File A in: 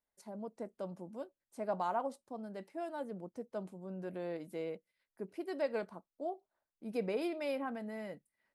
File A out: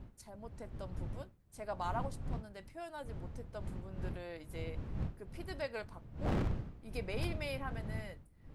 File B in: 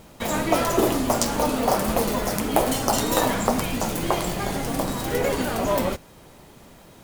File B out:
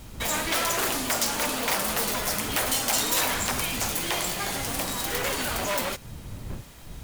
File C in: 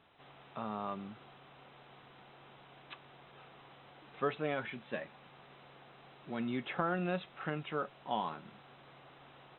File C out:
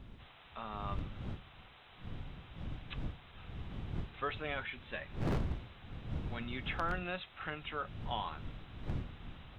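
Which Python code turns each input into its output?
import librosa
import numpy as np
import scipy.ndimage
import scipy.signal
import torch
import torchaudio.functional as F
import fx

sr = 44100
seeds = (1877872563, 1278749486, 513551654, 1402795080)

y = fx.dmg_wind(x, sr, seeds[0], corner_hz=110.0, level_db=-31.0)
y = 10.0 ** (-18.5 / 20.0) * (np.abs((y / 10.0 ** (-18.5 / 20.0) + 3.0) % 4.0 - 2.0) - 1.0)
y = fx.tilt_shelf(y, sr, db=-7.0, hz=970.0)
y = y * 10.0 ** (-2.5 / 20.0)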